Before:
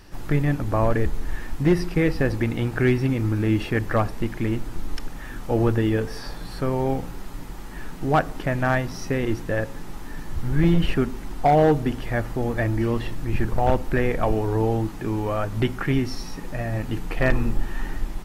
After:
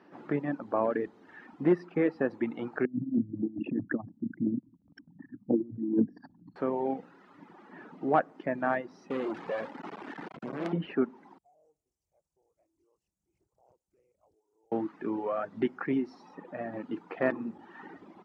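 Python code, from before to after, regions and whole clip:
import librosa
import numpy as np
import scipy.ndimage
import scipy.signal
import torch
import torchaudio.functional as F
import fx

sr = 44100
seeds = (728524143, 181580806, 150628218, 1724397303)

y = fx.chain(x, sr, fx.envelope_sharpen(power=3.0),
    fx.low_shelf_res(hz=360.0, db=6.5, q=3.0),
    fx.over_compress(threshold_db=-17.0, ratio=-0.5), at=(2.85, 6.56))
y = fx.chain(y, sr, fx.lowpass(hz=3800.0, slope=12),
    fx.low_shelf(hz=260.0, db=-4.5),
    fx.quant_companded(bits=2), at=(9.1, 10.73))
y = fx.chain(y, sr, fx.cheby2_bandstop(low_hz=100.0, high_hz=3900.0, order=4, stop_db=40),
    fx.doppler_dist(depth_ms=0.92), at=(11.38, 14.72))
y = scipy.signal.sosfilt(scipy.signal.bessel(2, 1300.0, 'lowpass', norm='mag', fs=sr, output='sos'), y)
y = fx.dereverb_blind(y, sr, rt60_s=1.4)
y = scipy.signal.sosfilt(scipy.signal.butter(4, 210.0, 'highpass', fs=sr, output='sos'), y)
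y = F.gain(torch.from_numpy(y), -3.0).numpy()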